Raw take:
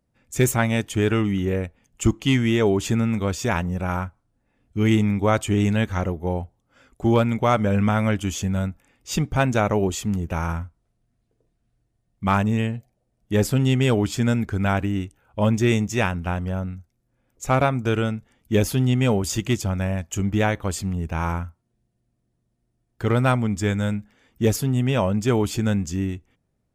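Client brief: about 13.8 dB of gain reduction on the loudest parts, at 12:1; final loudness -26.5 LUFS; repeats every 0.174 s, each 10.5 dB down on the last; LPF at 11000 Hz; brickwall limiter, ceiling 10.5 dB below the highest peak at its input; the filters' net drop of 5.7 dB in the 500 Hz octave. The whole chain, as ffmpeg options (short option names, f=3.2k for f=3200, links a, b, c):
-af "lowpass=11k,equalizer=f=500:t=o:g=-7.5,acompressor=threshold=-29dB:ratio=12,alimiter=level_in=5.5dB:limit=-24dB:level=0:latency=1,volume=-5.5dB,aecho=1:1:174|348|522:0.299|0.0896|0.0269,volume=12.5dB"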